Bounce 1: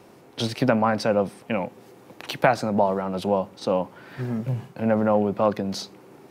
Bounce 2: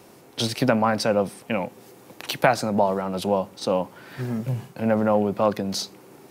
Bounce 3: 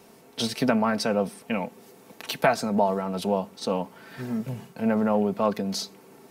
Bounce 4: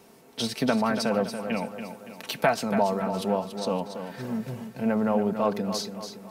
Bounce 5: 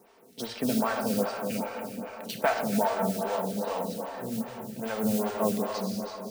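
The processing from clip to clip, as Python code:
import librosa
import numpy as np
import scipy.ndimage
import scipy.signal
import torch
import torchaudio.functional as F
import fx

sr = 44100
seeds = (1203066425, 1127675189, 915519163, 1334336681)

y1 = fx.high_shelf(x, sr, hz=4800.0, db=9.5)
y2 = y1 + 0.5 * np.pad(y1, (int(4.5 * sr / 1000.0), 0))[:len(y1)]
y2 = F.gain(torch.from_numpy(y2), -3.5).numpy()
y3 = fx.echo_feedback(y2, sr, ms=283, feedback_pct=46, wet_db=-9.0)
y3 = F.gain(torch.from_numpy(y3), -1.5).numpy()
y4 = fx.mod_noise(y3, sr, seeds[0], snr_db=12)
y4 = fx.rev_plate(y4, sr, seeds[1], rt60_s=4.0, hf_ratio=0.6, predelay_ms=0, drr_db=1.5)
y4 = fx.stagger_phaser(y4, sr, hz=2.5)
y4 = F.gain(torch.from_numpy(y4), -2.5).numpy()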